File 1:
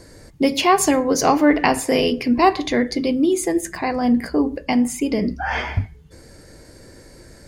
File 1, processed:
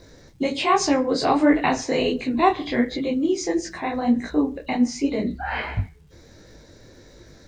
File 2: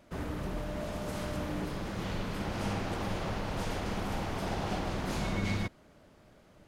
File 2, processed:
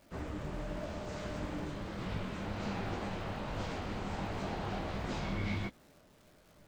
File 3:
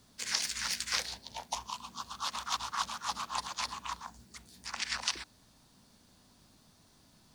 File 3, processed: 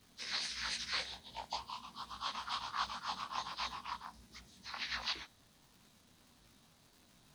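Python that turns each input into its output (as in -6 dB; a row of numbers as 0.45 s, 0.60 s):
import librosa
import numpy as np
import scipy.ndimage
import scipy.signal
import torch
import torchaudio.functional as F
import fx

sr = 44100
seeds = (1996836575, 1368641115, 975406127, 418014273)

y = fx.freq_compress(x, sr, knee_hz=2800.0, ratio=1.5)
y = fx.dmg_crackle(y, sr, seeds[0], per_s=440.0, level_db=-50.0)
y = fx.detune_double(y, sr, cents=48)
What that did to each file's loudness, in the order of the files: -3.5 LU, -3.5 LU, -5.0 LU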